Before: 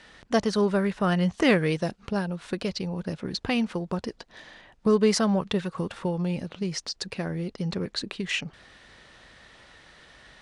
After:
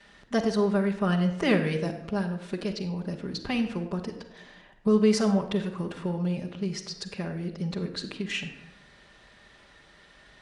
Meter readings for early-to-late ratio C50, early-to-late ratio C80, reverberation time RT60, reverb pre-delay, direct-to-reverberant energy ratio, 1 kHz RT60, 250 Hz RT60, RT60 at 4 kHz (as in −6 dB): 8.5 dB, 11.0 dB, 0.85 s, 5 ms, −8.5 dB, 0.75 s, 0.95 s, 0.55 s